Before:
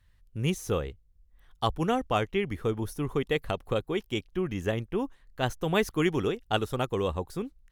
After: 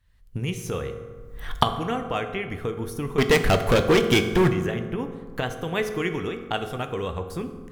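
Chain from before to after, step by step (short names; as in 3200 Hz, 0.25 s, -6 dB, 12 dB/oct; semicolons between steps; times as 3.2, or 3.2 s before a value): recorder AGC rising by 39 dB/s; dynamic EQ 2000 Hz, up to +6 dB, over -44 dBFS, Q 1.2; 3.18–4.49 sample leveller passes 5; reverb RT60 1.5 s, pre-delay 3 ms, DRR 6 dB; gain -3.5 dB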